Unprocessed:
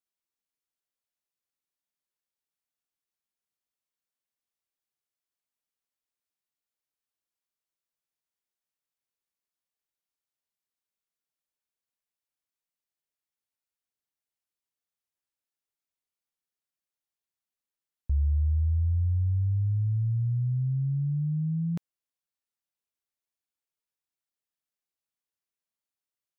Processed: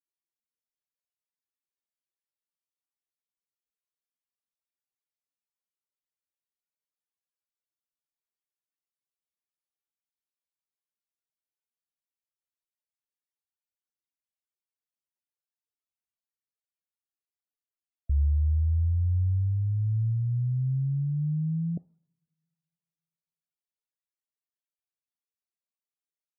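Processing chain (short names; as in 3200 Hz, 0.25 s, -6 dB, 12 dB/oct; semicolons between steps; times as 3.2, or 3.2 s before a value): two-slope reverb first 0.48 s, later 2.3 s, from -26 dB, DRR 20 dB; 18.69–19.33 crackle 14/s -42 dBFS; loudest bins only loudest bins 32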